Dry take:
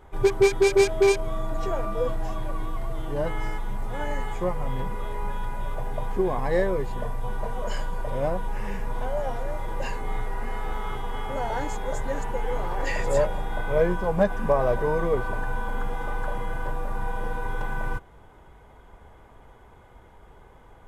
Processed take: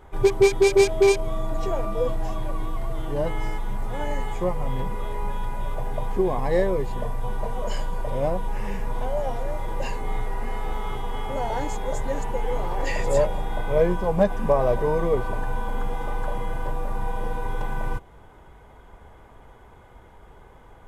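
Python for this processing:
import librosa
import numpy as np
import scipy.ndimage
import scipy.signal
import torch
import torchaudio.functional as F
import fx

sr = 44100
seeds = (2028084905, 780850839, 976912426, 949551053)

y = fx.dynamic_eq(x, sr, hz=1500.0, q=2.3, threshold_db=-46.0, ratio=4.0, max_db=-6)
y = F.gain(torch.from_numpy(y), 2.0).numpy()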